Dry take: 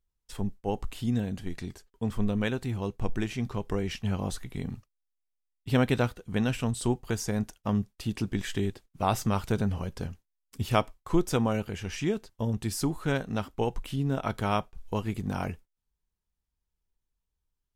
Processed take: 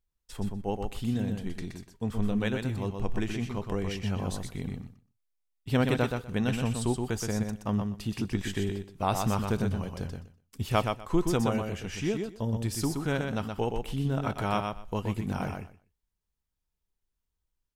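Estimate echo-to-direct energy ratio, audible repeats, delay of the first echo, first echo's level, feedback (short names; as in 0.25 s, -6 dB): -5.0 dB, 2, 0.123 s, -5.0 dB, 16%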